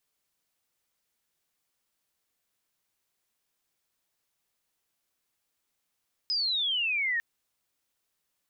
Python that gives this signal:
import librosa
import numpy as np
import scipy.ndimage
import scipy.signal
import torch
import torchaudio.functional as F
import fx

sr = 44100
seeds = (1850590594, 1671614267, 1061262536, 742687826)

y = fx.chirp(sr, length_s=0.9, from_hz=5100.0, to_hz=1800.0, law='logarithmic', from_db=-25.5, to_db=-25.5)